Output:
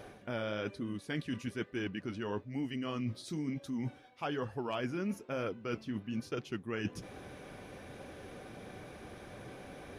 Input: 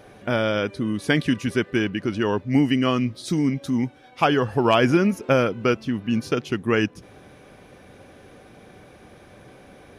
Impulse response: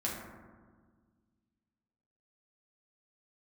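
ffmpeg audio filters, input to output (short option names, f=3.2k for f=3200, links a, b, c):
-af "areverse,acompressor=threshold=-34dB:ratio=6,areverse,flanger=delay=1.7:depth=9.4:regen=-63:speed=1.1:shape=triangular,volume=3dB"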